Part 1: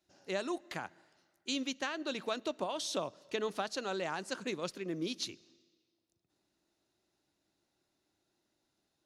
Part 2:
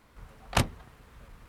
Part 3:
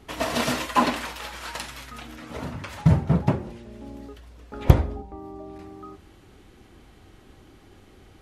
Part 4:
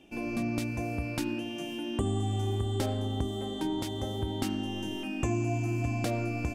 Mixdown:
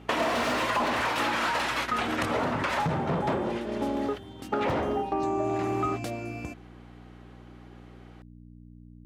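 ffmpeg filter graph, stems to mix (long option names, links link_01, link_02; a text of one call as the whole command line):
ffmpeg -i stem1.wav -i stem2.wav -i stem3.wav -i stem4.wav -filter_complex "[0:a]volume=-11.5dB,asplit=2[link_01][link_02];[1:a]adelay=1650,volume=-3.5dB[link_03];[2:a]asplit=2[link_04][link_05];[link_05]highpass=frequency=720:poles=1,volume=36dB,asoftclip=type=tanh:threshold=-2dB[link_06];[link_04][link_06]amix=inputs=2:normalize=0,lowpass=frequency=1100:poles=1,volume=-6dB,volume=-4dB[link_07];[3:a]volume=-2.5dB[link_08];[link_02]apad=whole_len=288489[link_09];[link_08][link_09]sidechaincompress=threshold=-52dB:ratio=8:attack=25:release=658[link_10];[link_01][link_03][link_07]amix=inputs=3:normalize=0,agate=range=-19dB:threshold=-25dB:ratio=16:detection=peak,acompressor=threshold=-25dB:ratio=6,volume=0dB[link_11];[link_10][link_11]amix=inputs=2:normalize=0,aeval=exprs='val(0)+0.00794*(sin(2*PI*60*n/s)+sin(2*PI*2*60*n/s)/2+sin(2*PI*3*60*n/s)/3+sin(2*PI*4*60*n/s)/4+sin(2*PI*5*60*n/s)/5)':channel_layout=same,highpass=frequency=140:poles=1" out.wav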